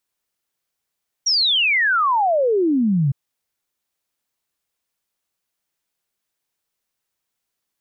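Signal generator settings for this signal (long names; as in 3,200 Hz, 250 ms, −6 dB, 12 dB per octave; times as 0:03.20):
exponential sine sweep 5,800 Hz → 130 Hz 1.86 s −14.5 dBFS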